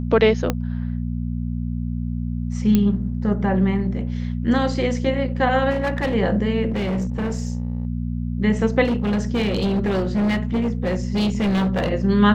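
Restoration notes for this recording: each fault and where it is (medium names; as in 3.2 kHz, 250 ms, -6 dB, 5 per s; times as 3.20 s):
hum 60 Hz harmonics 4 -25 dBFS
0.50 s: pop -7 dBFS
2.75 s: pop -6 dBFS
5.70–6.15 s: clipped -18 dBFS
6.69–7.87 s: clipped -19.5 dBFS
8.84–11.90 s: clipped -17 dBFS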